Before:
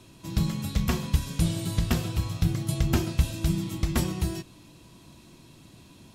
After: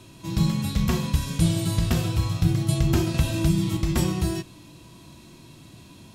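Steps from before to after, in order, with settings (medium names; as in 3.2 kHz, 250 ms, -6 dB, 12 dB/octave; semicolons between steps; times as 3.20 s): harmonic-percussive split percussive -8 dB; 3.14–3.77 s: three bands compressed up and down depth 70%; trim +6.5 dB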